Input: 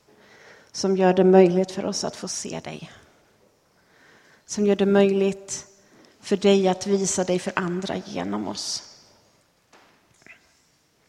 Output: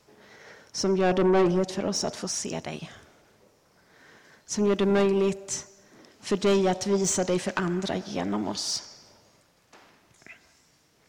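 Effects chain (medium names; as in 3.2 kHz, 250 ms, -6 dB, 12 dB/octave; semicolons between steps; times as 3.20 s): saturation -17 dBFS, distortion -9 dB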